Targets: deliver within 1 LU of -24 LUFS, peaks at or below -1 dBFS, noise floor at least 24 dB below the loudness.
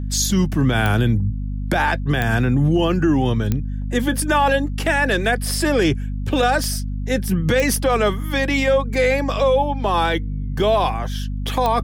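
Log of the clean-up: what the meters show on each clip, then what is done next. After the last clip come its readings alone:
clicks 6; hum 50 Hz; harmonics up to 250 Hz; hum level -22 dBFS; loudness -19.5 LUFS; peak -5.0 dBFS; loudness target -24.0 LUFS
-> de-click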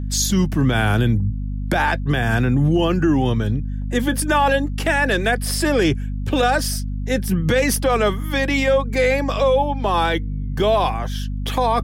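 clicks 0; hum 50 Hz; harmonics up to 250 Hz; hum level -22 dBFS
-> notches 50/100/150/200/250 Hz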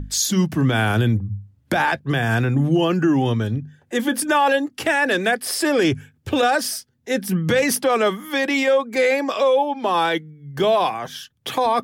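hum none; loudness -20.0 LUFS; peak -8.0 dBFS; loudness target -24.0 LUFS
-> gain -4 dB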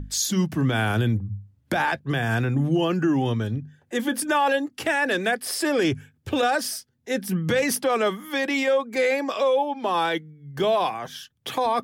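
loudness -24.0 LUFS; peak -12.0 dBFS; noise floor -66 dBFS

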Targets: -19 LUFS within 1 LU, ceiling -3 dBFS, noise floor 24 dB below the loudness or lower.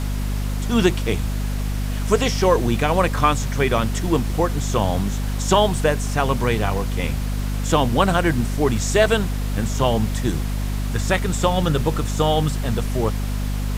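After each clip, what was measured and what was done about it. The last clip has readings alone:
hum 50 Hz; harmonics up to 250 Hz; hum level -21 dBFS; noise floor -24 dBFS; noise floor target -45 dBFS; loudness -21.0 LUFS; peak -1.5 dBFS; loudness target -19.0 LUFS
-> notches 50/100/150/200/250 Hz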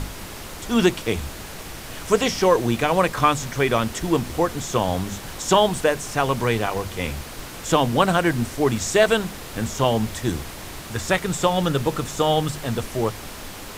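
hum none; noise floor -37 dBFS; noise floor target -46 dBFS
-> noise print and reduce 9 dB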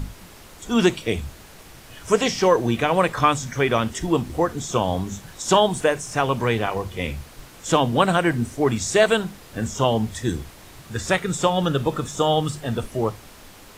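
noise floor -45 dBFS; noise floor target -46 dBFS
-> noise print and reduce 6 dB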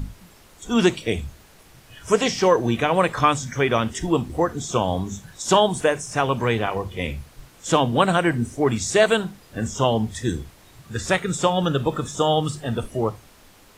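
noise floor -51 dBFS; loudness -22.0 LUFS; peak -3.5 dBFS; loudness target -19.0 LUFS
-> gain +3 dB; limiter -3 dBFS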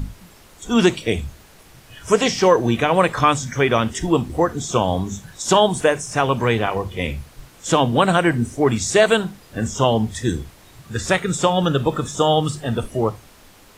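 loudness -19.5 LUFS; peak -3.0 dBFS; noise floor -48 dBFS

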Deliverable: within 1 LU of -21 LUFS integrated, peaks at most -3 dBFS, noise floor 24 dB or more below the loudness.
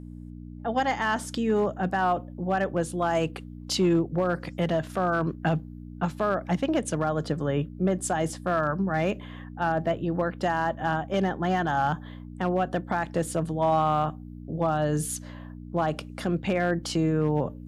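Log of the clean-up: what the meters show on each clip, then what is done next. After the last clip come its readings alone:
clipped 0.5%; flat tops at -16.0 dBFS; hum 60 Hz; harmonics up to 300 Hz; hum level -40 dBFS; loudness -27.0 LUFS; peak -16.0 dBFS; loudness target -21.0 LUFS
-> clip repair -16 dBFS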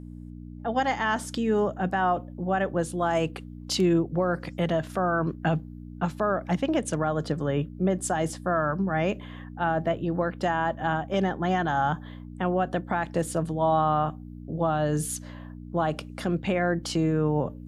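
clipped 0.0%; hum 60 Hz; harmonics up to 300 Hz; hum level -40 dBFS
-> de-hum 60 Hz, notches 5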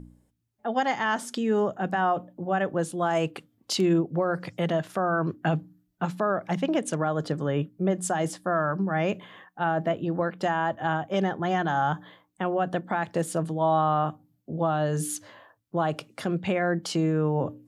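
hum none; loudness -27.5 LUFS; peak -12.5 dBFS; loudness target -21.0 LUFS
-> gain +6.5 dB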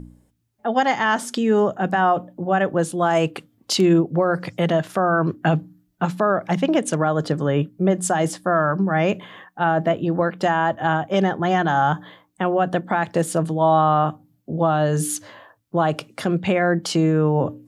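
loudness -21.0 LUFS; peak -6.0 dBFS; noise floor -65 dBFS

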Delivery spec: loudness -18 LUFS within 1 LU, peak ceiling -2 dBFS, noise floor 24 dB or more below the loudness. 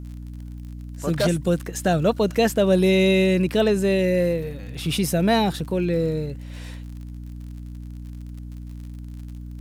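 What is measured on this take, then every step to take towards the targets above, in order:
ticks 57/s; hum 60 Hz; harmonics up to 300 Hz; hum level -33 dBFS; loudness -21.5 LUFS; peak -8.5 dBFS; loudness target -18.0 LUFS
-> de-click; de-hum 60 Hz, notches 5; gain +3.5 dB

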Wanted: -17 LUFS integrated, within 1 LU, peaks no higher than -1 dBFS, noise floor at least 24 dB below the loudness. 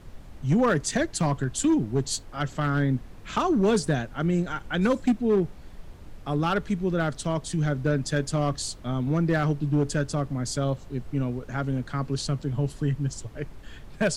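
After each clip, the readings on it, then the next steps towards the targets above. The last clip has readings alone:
clipped 0.7%; flat tops at -16.0 dBFS; noise floor -45 dBFS; noise floor target -51 dBFS; loudness -26.5 LUFS; peak -16.0 dBFS; loudness target -17.0 LUFS
-> clip repair -16 dBFS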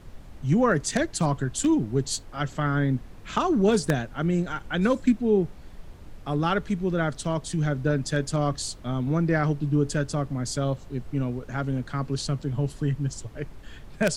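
clipped 0.0%; noise floor -45 dBFS; noise floor target -50 dBFS
-> noise print and reduce 6 dB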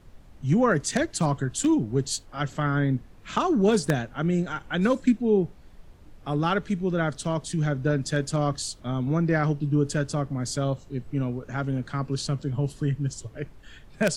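noise floor -50 dBFS; noise floor target -51 dBFS
-> noise print and reduce 6 dB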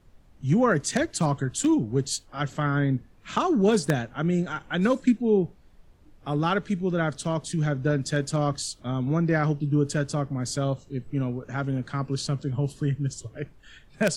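noise floor -55 dBFS; loudness -26.5 LUFS; peak -7.0 dBFS; loudness target -17.0 LUFS
-> gain +9.5 dB; limiter -1 dBFS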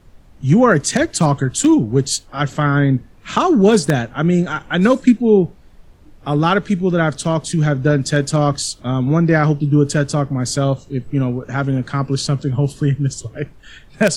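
loudness -17.0 LUFS; peak -1.0 dBFS; noise floor -45 dBFS

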